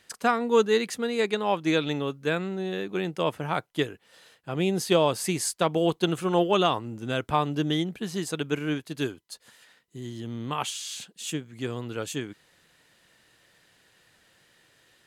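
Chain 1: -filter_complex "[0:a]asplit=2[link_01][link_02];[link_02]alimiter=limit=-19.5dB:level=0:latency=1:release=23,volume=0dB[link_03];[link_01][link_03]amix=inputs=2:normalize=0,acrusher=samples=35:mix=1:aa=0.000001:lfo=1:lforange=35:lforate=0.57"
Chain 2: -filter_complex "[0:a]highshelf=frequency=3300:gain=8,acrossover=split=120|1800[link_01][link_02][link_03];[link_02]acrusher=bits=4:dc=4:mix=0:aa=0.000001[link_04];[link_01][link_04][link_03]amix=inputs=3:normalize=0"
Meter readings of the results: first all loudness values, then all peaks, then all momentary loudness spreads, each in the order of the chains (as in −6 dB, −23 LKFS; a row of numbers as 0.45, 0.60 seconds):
−23.5, −26.0 LKFS; −7.5, −5.5 dBFS; 11, 15 LU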